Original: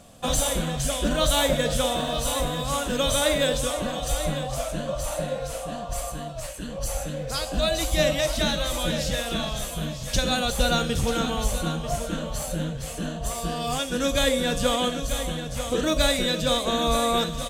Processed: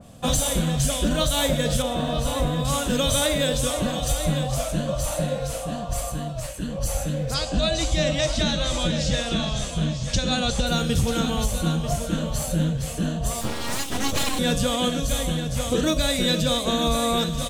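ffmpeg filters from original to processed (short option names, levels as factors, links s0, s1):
-filter_complex "[0:a]asettb=1/sr,asplit=3[s0][s1][s2];[s0]atrim=end=1.824[s3];[s1]atrim=start=1.82:end=2.65,asetpts=PTS-STARTPTS,afade=t=in:d=0.004:c=qsin,afade=t=out:st=0.826:d=0.004:c=qsin,highshelf=f=3400:g=-10.5[s4];[s2]atrim=start=2.646[s5];[s3][s4]acrossfade=d=0.004:c1=hsin:c2=qsin[s6];[s6][s5]acrossfade=d=0.004:c1=qsin:c2=hsin,asettb=1/sr,asplit=3[s7][s8][s9];[s7]atrim=end=7.344[s10];[s8]atrim=start=7.34:end=10.67,asetpts=PTS-STARTPTS,afade=t=in:d=0.004:c=qsin,afade=t=out:st=3.326:d=0.004:c=qsin,lowpass=f=7800:w=0.5412,lowpass=f=7800:w=1.3066[s11];[s9]atrim=start=10.666[s12];[s10][s11]acrossfade=d=0.004:c1=hsin:c2=qsin[s13];[s13][s12]acrossfade=d=0.004:c1=qsin:c2=hsin,asettb=1/sr,asplit=3[s14][s15][s16];[s14]atrim=end=13.414[s17];[s15]atrim=start=13.41:end=14.39,asetpts=PTS-STARTPTS,afade=t=in:d=0.004:c=qsin,afade=t=out:st=0.976:d=0.004:c=qsin,aeval=exprs='abs(val(0))':c=same[s18];[s16]atrim=start=14.386[s19];[s17][s18]acrossfade=d=0.004:c1=hsin:c2=qsin[s20];[s20][s19]acrossfade=d=0.004:c1=qsin:c2=hsin,equalizer=f=120:t=o:w=2.6:g=8,alimiter=limit=0.237:level=0:latency=1:release=288,adynamicequalizer=threshold=0.0126:dfrequency=2500:dqfactor=0.7:tfrequency=2500:tqfactor=0.7:attack=5:release=100:ratio=0.375:range=2:mode=boostabove:tftype=highshelf"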